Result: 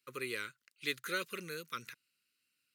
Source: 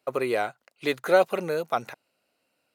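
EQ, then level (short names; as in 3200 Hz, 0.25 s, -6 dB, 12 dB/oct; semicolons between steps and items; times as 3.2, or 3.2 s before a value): passive tone stack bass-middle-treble 5-5-5; dynamic EQ 460 Hz, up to +5 dB, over -50 dBFS, Q 1.2; Butterworth band-stop 730 Hz, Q 0.88; +3.5 dB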